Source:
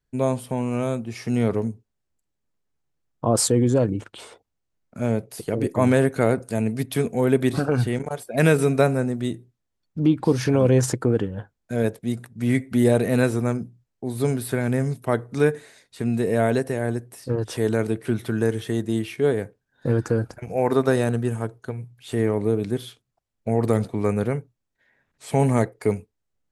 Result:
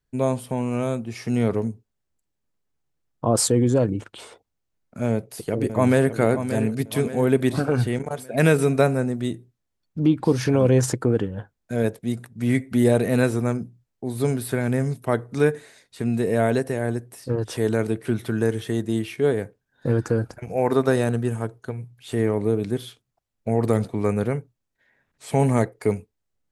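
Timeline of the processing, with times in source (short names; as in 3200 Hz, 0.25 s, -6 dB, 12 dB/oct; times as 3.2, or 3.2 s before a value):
5.11–6.16 echo throw 0.58 s, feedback 50%, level -10 dB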